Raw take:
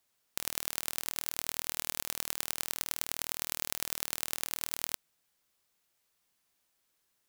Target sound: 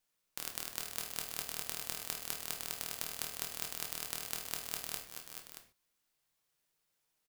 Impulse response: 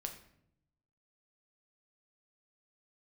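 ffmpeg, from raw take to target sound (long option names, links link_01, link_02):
-filter_complex "[0:a]aeval=exprs='val(0)*sin(2*PI*850*n/s)':channel_layout=same,aecho=1:1:435|628:0.376|0.299[link_01];[1:a]atrim=start_sample=2205,afade=type=out:start_time=0.2:duration=0.01,atrim=end_sample=9261[link_02];[link_01][link_02]afir=irnorm=-1:irlink=0"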